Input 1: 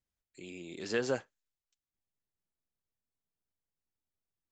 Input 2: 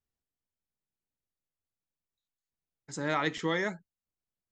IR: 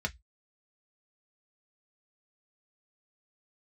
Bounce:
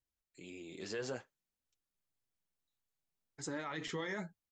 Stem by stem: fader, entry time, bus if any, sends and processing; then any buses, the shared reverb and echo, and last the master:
0.0 dB, 0.00 s, no send, dry
+2.0 dB, 0.50 s, no send, dry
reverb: off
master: flange 0.58 Hz, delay 2.1 ms, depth 9.5 ms, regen -37%; limiter -31 dBFS, peak gain reduction 13.5 dB

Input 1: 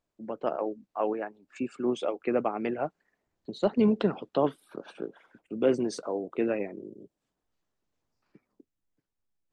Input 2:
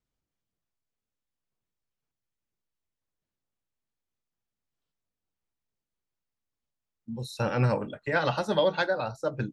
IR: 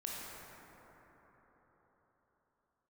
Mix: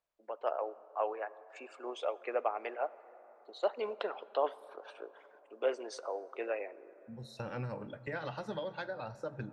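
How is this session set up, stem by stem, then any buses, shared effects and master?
-3.0 dB, 0.00 s, send -17.5 dB, HPF 520 Hz 24 dB/oct
6.83 s -16 dB -> 7.52 s -6 dB, 0.00 s, send -15.5 dB, compressor 6:1, threshold -31 dBFS, peak gain reduction 11 dB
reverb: on, RT60 4.8 s, pre-delay 18 ms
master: high shelf 6300 Hz -10.5 dB

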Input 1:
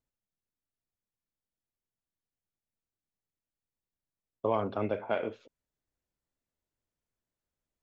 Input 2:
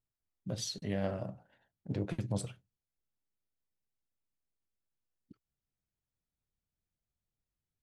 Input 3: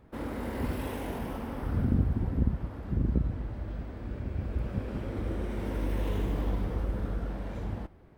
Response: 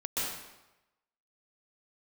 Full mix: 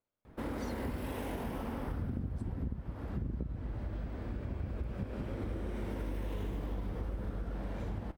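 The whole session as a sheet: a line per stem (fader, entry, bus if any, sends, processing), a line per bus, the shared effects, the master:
-15.0 dB, 0.00 s, no send, per-bin compression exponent 0.6; resonator 98 Hz, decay 0.86 s, harmonics all, mix 80%
-14.5 dB, 0.00 s, no send, dry
+1.0 dB, 0.25 s, no send, dry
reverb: off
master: compressor 6:1, threshold -34 dBFS, peak gain reduction 14.5 dB

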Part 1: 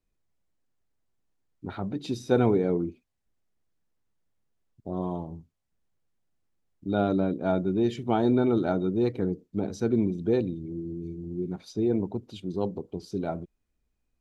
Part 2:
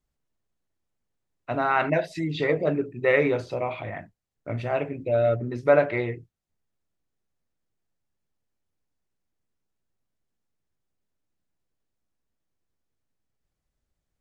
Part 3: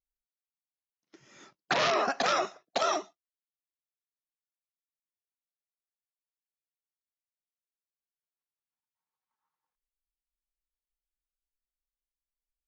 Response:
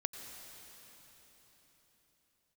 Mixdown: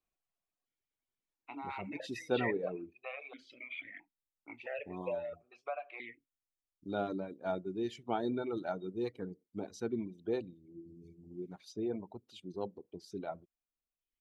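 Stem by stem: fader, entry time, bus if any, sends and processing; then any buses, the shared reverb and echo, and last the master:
-6.5 dB, 0.00 s, no send, dry
+2.0 dB, 0.00 s, no send, compressor 8:1, threshold -25 dBFS, peak gain reduction 12.5 dB; tilt shelf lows -7.5 dB, about 840 Hz; vowel sequencer 1.5 Hz
off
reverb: off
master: reverb removal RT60 1.5 s; low shelf 220 Hz -11 dB

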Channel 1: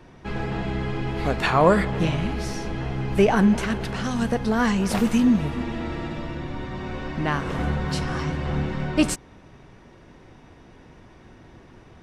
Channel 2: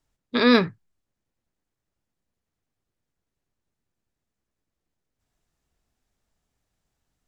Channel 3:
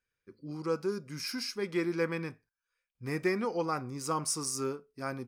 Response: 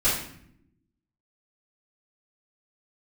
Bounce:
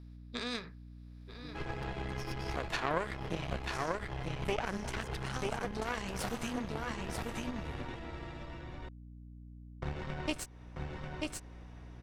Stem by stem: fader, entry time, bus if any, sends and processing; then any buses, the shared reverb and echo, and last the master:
+2.0 dB, 1.30 s, muted 7.95–9.82, no send, echo send -4.5 dB, bell 220 Hz -10 dB 0.98 oct
-13.0 dB, 0.00 s, no send, echo send -15 dB, per-bin compression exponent 0.6; high shelf 2400 Hz +9.5 dB; AGC gain up to 8.5 dB
-3.0 dB, 1.00 s, no send, echo send -11 dB, negative-ratio compressor -42 dBFS, ratio -1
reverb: off
echo: echo 0.939 s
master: added harmonics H 3 -13 dB, 4 -16 dB, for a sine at -3 dBFS; hum 60 Hz, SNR 18 dB; compressor 2.5:1, threshold -35 dBFS, peak gain reduction 15.5 dB

